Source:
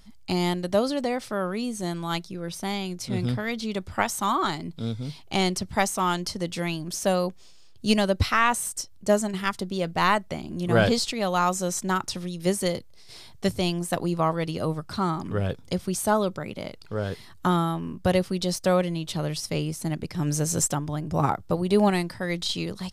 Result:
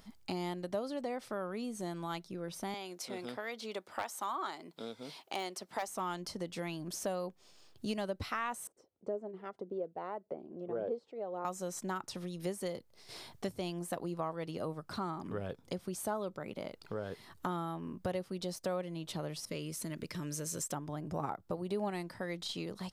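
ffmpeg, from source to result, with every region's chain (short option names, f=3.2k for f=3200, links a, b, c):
-filter_complex "[0:a]asettb=1/sr,asplit=3[a][b][c];[a]atrim=end=2.744[d];[b]atrim=start=2.74:end=5.88,asetpts=PTS-STARTPTS,afade=t=in:d=0.004:c=qsin,afade=t=out:st=3.136:d=0.004:c=qsin,highpass=410,aeval=exprs='0.251*(abs(mod(val(0)/0.251+3,4)-2)-1)':c=same[e];[c]atrim=start=5.876[f];[d][e]acrossfade=d=0.004:c1=hsin:c2=qsin[g];[g][f]acrossfade=d=0.004:c1=qsin:c2=hsin,asettb=1/sr,asplit=3[h][i][j];[h]atrim=end=8.674[k];[i]atrim=start=8.67:end=11.45,asetpts=PTS-STARTPTS,afade=t=in:d=0.004:c=qsin,afade=t=out:st=2.776:d=0.004:c=qsin,bandpass=f=450:t=q:w=2.6,aphaser=in_gain=1:out_gain=1:delay=1.5:decay=0.38:speed=1.8:type=sinusoidal[l];[j]atrim=start=11.446[m];[k][l]acrossfade=d=0.004:c1=hsin:c2=qsin[n];[n][m]acrossfade=d=0.004:c1=qsin:c2=hsin,asettb=1/sr,asplit=3[o][p][q];[o]atrim=end=19.454[r];[p]atrim=start=19.45:end=20.72,asetpts=PTS-STARTPTS,afade=t=in:d=0.004:c=qsin,afade=t=out:st=1.266:d=0.004:c=qsin,acompressor=threshold=-28dB:ratio=2.5:attack=3.2:release=140:knee=1:detection=peak,asuperstop=centerf=780:order=4:qfactor=4.1,adynamicequalizer=threshold=0.00282:dfrequency=1500:dqfactor=0.7:tfrequency=1500:tqfactor=0.7:attack=5:release=100:ratio=0.375:range=3:mode=boostabove:tftype=highshelf[s];[q]atrim=start=20.716[t];[r][s]acrossfade=d=0.004:c1=hsin:c2=qsin[u];[u][t]acrossfade=d=0.004:c1=qsin:c2=hsin,lowpass=f=1k:p=1,aemphasis=mode=production:type=bsi,acompressor=threshold=-45dB:ratio=2.5,volume=4dB"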